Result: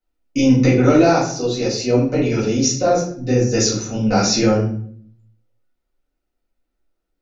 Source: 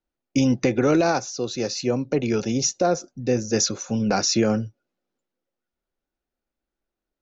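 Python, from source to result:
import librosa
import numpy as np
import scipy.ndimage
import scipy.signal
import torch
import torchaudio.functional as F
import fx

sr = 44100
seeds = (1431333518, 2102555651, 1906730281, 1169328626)

y = fx.room_shoebox(x, sr, seeds[0], volume_m3=71.0, walls='mixed', distance_m=2.0)
y = y * librosa.db_to_amplitude(-4.5)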